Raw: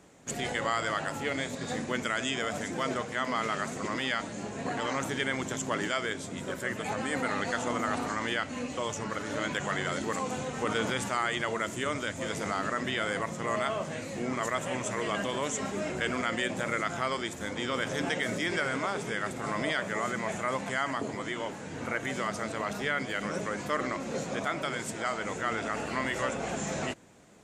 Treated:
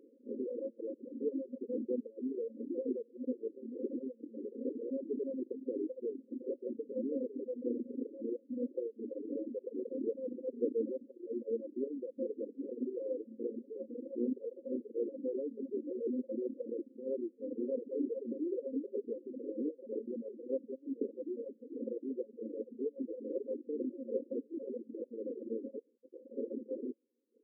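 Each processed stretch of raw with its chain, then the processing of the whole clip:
25.79–26.37 s: low-pass 1.3 kHz + hard clipper -36.5 dBFS + transformer saturation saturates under 700 Hz
whole clip: reverb removal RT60 1.2 s; FFT band-pass 220–550 Hz; reverb removal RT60 0.75 s; trim +2 dB

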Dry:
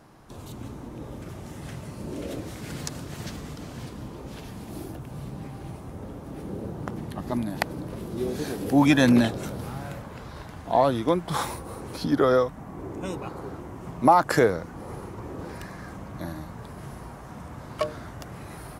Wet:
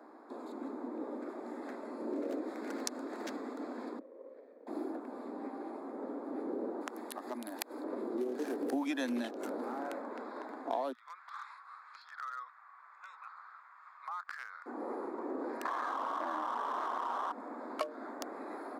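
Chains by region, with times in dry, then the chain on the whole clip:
3.99–4.67 s: vowel filter e + treble shelf 2.1 kHz -10.5 dB + sliding maximum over 9 samples
6.81–7.84 s: tilt EQ +3.5 dB/octave + compression 3:1, threshold -37 dBFS
10.92–14.66 s: elliptic high-pass 1.2 kHz, stop band 80 dB + compression 3:1, threshold -40 dBFS + distance through air 110 m
15.65–17.32 s: resonant low-pass 1.1 kHz, resonance Q 3.2 + tilt shelf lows -10 dB, about 690 Hz + level flattener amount 100%
whole clip: local Wiener filter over 15 samples; steep high-pass 240 Hz 72 dB/octave; compression 8:1, threshold -34 dBFS; trim +1.5 dB

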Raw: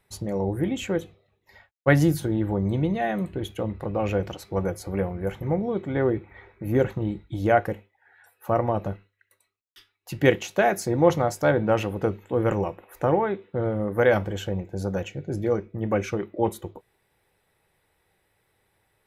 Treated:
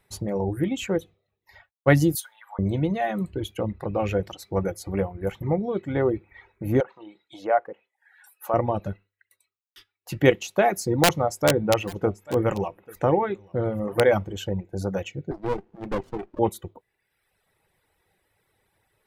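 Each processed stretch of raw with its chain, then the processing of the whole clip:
2.15–2.59 s: inverse Chebyshev high-pass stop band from 370 Hz, stop band 50 dB + treble shelf 7.6 kHz +11 dB + three bands expanded up and down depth 40%
6.80–8.54 s: low-pass that closes with the level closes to 1.3 kHz, closed at -20 dBFS + high-pass 580 Hz + treble shelf 5.8 kHz +9.5 dB
11.03–14.05 s: integer overflow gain 10.5 dB + delay 839 ms -18 dB
15.31–16.39 s: band-pass 300–2100 Hz + upward compressor, threshold -35 dBFS + sliding maximum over 33 samples
whole clip: reverb removal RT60 0.96 s; dynamic bell 1.6 kHz, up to -5 dB, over -47 dBFS, Q 5.5; trim +1.5 dB

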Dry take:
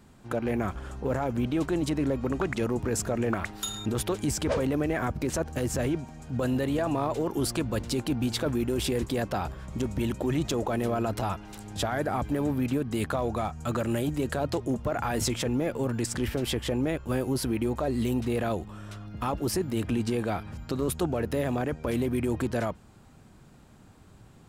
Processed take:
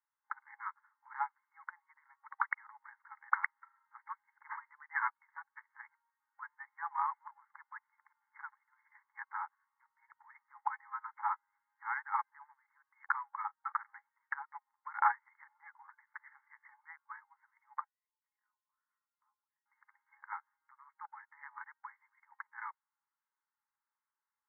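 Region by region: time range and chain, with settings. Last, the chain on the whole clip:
17.84–19.66 s: compression, threshold -34 dBFS + feedback comb 210 Hz, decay 0.32 s, harmonics odd, mix 80%
whole clip: FFT band-pass 810–2200 Hz; upward expansion 2.5:1, over -53 dBFS; trim +7 dB

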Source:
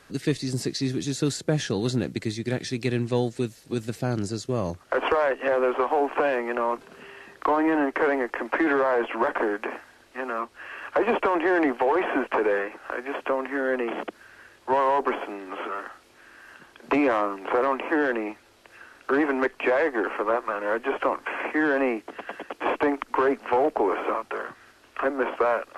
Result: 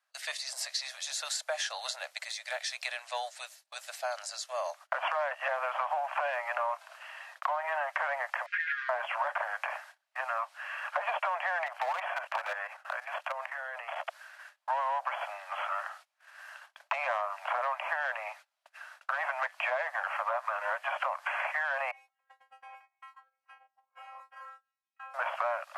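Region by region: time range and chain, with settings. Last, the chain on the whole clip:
8.46–8.89 s: steep high-pass 1.6 kHz 48 dB/octave + distance through air 140 m + comb 4.9 ms, depth 78%
11.66–14.07 s: bass shelf 150 Hz +2 dB + level held to a coarse grid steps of 11 dB + hard clipper -21 dBFS
21.91–25.14 s: compressor with a negative ratio -29 dBFS + inharmonic resonator 260 Hz, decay 0.74 s, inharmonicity 0.002
whole clip: steep high-pass 590 Hz 96 dB/octave; gate -50 dBFS, range -26 dB; compression, threshold -28 dBFS

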